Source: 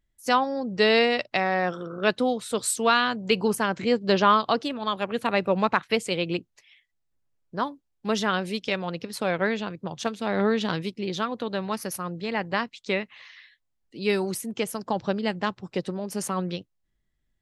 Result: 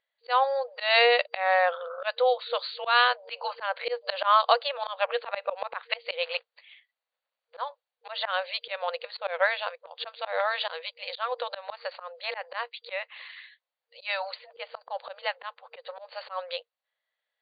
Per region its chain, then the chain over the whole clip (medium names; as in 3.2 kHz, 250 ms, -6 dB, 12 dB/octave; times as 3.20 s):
6.22–7.62 s: treble shelf 8.9 kHz +8 dB + short-mantissa float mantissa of 2-bit
15.13–15.86 s: median filter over 9 samples + dynamic bell 620 Hz, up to -5 dB, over -39 dBFS, Q 1.8
whole clip: FFT band-pass 470–4700 Hz; slow attack 154 ms; trim +3.5 dB